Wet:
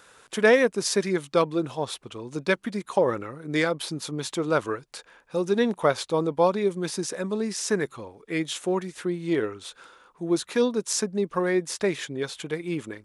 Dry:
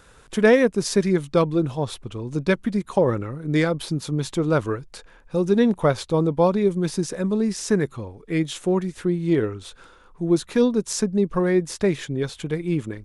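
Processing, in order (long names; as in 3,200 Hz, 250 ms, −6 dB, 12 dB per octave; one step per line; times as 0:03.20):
high-pass filter 540 Hz 6 dB per octave
level +1 dB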